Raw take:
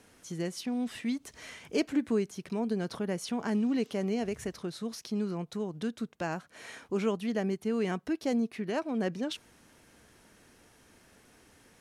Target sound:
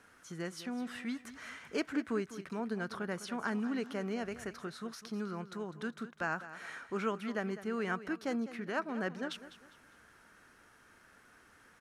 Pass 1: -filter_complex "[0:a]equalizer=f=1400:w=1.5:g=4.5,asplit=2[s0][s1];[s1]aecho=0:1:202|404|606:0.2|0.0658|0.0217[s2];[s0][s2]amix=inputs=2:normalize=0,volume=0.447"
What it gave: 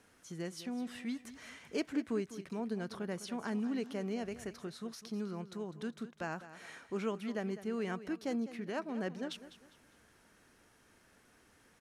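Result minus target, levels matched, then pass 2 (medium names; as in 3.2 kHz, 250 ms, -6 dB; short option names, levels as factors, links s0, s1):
1 kHz band -3.5 dB
-filter_complex "[0:a]equalizer=f=1400:w=1.5:g=14,asplit=2[s0][s1];[s1]aecho=0:1:202|404|606:0.2|0.0658|0.0217[s2];[s0][s2]amix=inputs=2:normalize=0,volume=0.447"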